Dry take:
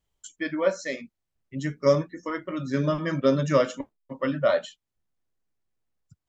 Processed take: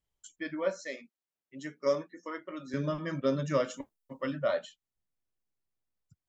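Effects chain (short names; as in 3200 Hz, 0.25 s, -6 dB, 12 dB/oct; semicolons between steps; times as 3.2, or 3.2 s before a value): 0.8–2.74 HPF 290 Hz 12 dB/oct; 3.7–4.35 high shelf 4200 Hz -> 6100 Hz +12 dB; gain -7.5 dB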